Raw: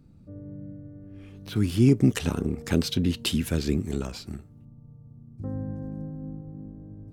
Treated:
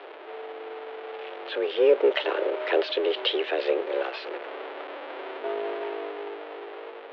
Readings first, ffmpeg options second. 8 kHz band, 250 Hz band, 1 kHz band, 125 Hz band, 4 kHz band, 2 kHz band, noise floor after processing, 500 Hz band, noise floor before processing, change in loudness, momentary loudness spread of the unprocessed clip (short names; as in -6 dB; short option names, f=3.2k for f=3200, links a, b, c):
under -25 dB, -11.5 dB, +12.0 dB, under -40 dB, +3.0 dB, +7.5 dB, -42 dBFS, +10.5 dB, -51 dBFS, -1.5 dB, 22 LU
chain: -af "aeval=exprs='val(0)+0.5*0.0316*sgn(val(0))':c=same,bandreject=f=920:w=24,dynaudnorm=f=250:g=11:m=7dB,highpass=f=270:t=q:w=0.5412,highpass=f=270:t=q:w=1.307,lowpass=f=3.3k:t=q:w=0.5176,lowpass=f=3.3k:t=q:w=0.7071,lowpass=f=3.3k:t=q:w=1.932,afreqshift=150,volume=-1.5dB"